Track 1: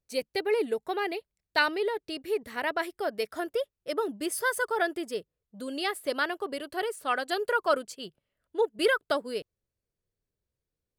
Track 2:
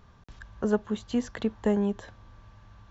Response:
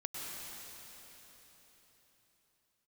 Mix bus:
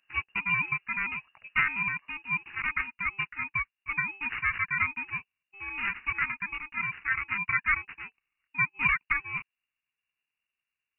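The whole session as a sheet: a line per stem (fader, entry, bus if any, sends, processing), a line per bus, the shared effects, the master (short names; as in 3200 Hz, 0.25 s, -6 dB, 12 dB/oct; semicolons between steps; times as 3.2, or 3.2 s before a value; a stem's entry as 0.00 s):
+1.0 dB, 0.00 s, no send, sample-and-hold 20×
-17.0 dB, 0.00 s, no send, dry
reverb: off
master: low shelf 460 Hz -5 dB; inverted band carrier 2800 Hz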